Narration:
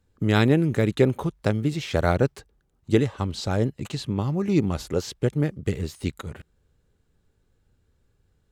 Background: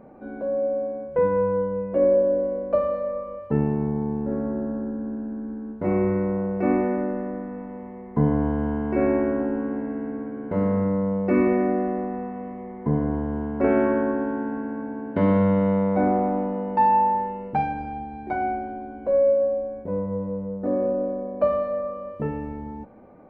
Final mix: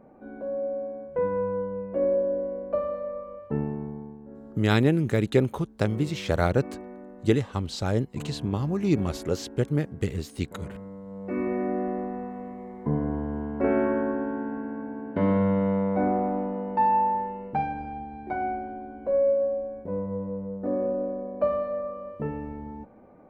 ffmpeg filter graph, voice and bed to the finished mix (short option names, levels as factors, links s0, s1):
-filter_complex "[0:a]adelay=4350,volume=0.794[s0];[1:a]volume=2.82,afade=t=out:st=3.53:d=0.65:silence=0.237137,afade=t=in:st=11.05:d=0.84:silence=0.188365[s1];[s0][s1]amix=inputs=2:normalize=0"